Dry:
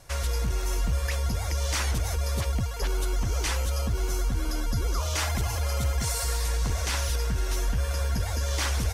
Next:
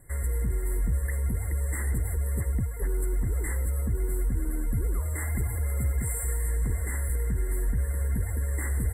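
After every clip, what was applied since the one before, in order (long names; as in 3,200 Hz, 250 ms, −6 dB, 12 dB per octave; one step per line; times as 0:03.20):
brick-wall band-stop 2,100–7,400 Hz
flat-topped bell 920 Hz −12 dB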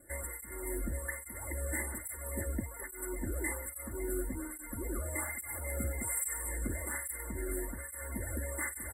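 comb filter 3.4 ms, depth 99%
through-zero flanger with one copy inverted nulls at 1.2 Hz, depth 1.1 ms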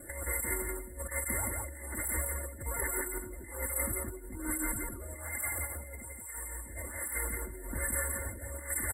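compressor whose output falls as the input rises −43 dBFS, ratio −0.5
single-tap delay 170 ms −3 dB
level +5 dB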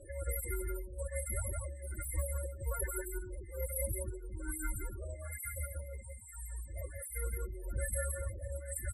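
spectral peaks only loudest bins 16
phaser with its sweep stopped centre 1,300 Hz, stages 8
level +3 dB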